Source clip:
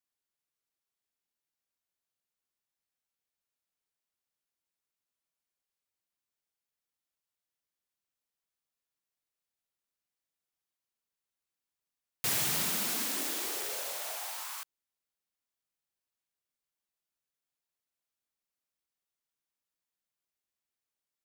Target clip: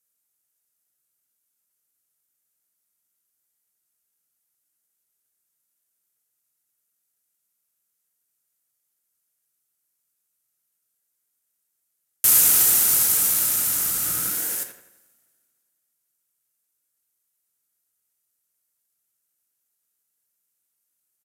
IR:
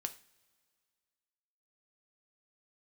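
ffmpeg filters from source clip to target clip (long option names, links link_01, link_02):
-filter_complex "[0:a]lowshelf=frequency=590:width_type=q:width=3:gain=-7,asplit=2[link_01][link_02];[link_02]adelay=85,lowpass=frequency=2400:poles=1,volume=-6.5dB,asplit=2[link_03][link_04];[link_04]adelay=85,lowpass=frequency=2400:poles=1,volume=0.51,asplit=2[link_05][link_06];[link_06]adelay=85,lowpass=frequency=2400:poles=1,volume=0.51,asplit=2[link_07][link_08];[link_08]adelay=85,lowpass=frequency=2400:poles=1,volume=0.51,asplit=2[link_09][link_10];[link_10]adelay=85,lowpass=frequency=2400:poles=1,volume=0.51,asplit=2[link_11][link_12];[link_12]adelay=85,lowpass=frequency=2400:poles=1,volume=0.51[link_13];[link_01][link_03][link_05][link_07][link_09][link_11][link_13]amix=inputs=7:normalize=0[link_14];[1:a]atrim=start_sample=2205[link_15];[link_14][link_15]afir=irnorm=-1:irlink=0,aeval=exprs='val(0)*sin(2*PI*580*n/s)':channel_layout=same,acrossover=split=5500[link_16][link_17];[link_17]crystalizer=i=4:c=0[link_18];[link_16][link_18]amix=inputs=2:normalize=0,aresample=32000,aresample=44100,volume=7dB"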